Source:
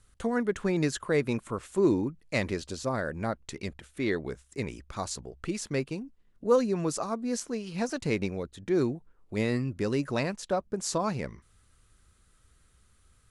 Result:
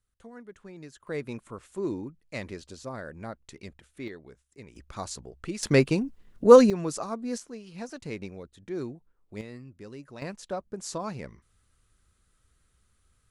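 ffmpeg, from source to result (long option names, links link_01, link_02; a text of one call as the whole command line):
ffmpeg -i in.wav -af "asetnsamples=nb_out_samples=441:pad=0,asendcmd='1.07 volume volume -7.5dB;4.08 volume volume -14dB;4.76 volume volume -2dB;5.63 volume volume 10dB;6.7 volume volume -1.5dB;7.38 volume volume -8dB;9.41 volume volume -15dB;10.22 volume volume -5dB',volume=-18dB" out.wav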